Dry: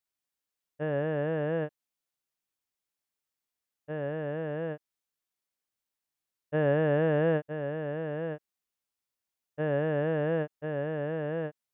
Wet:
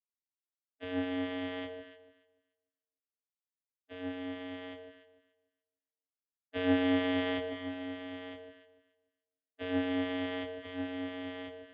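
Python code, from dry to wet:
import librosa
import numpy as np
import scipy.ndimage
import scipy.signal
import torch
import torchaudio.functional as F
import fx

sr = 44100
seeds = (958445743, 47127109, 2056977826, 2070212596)

y = fx.spec_clip(x, sr, under_db=29)
y = fx.band_shelf(y, sr, hz=1100.0, db=-11.5, octaves=1.3)
y = fx.vocoder(y, sr, bands=16, carrier='square', carrier_hz=91.0)
y = fx.echo_alternate(y, sr, ms=146, hz=960.0, feedback_pct=53, wet_db=-4.5)
y = fx.band_widen(y, sr, depth_pct=40)
y = y * 10.0 ** (-2.0 / 20.0)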